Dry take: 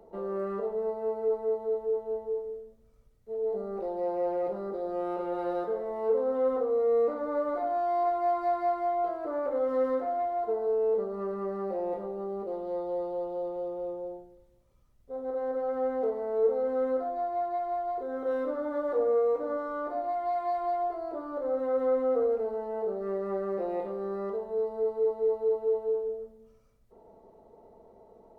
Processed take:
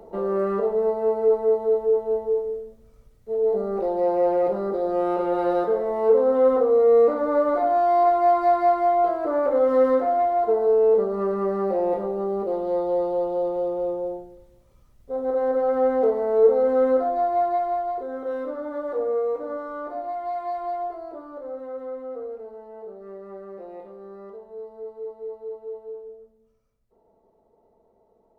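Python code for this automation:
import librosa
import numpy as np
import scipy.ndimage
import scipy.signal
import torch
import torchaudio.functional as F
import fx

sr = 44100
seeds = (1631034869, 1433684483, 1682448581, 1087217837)

y = fx.gain(x, sr, db=fx.line((17.48, 9.0), (18.29, 1.0), (20.83, 1.0), (21.91, -7.5)))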